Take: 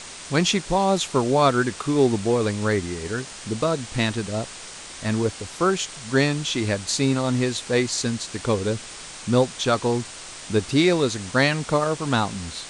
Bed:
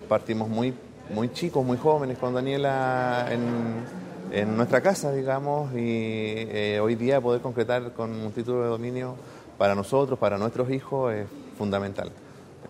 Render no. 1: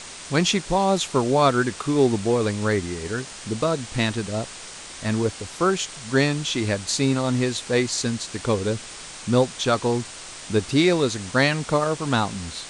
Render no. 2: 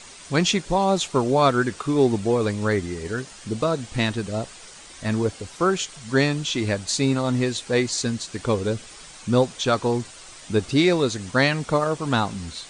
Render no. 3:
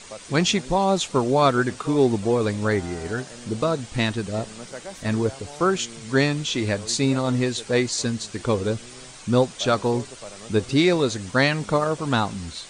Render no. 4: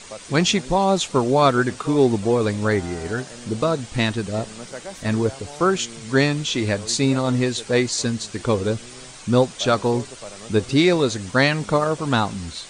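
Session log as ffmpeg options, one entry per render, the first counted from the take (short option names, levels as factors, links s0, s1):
-af anull
-af "afftdn=nr=8:nf=-39"
-filter_complex "[1:a]volume=0.15[s0];[0:a][s0]amix=inputs=2:normalize=0"
-af "volume=1.26"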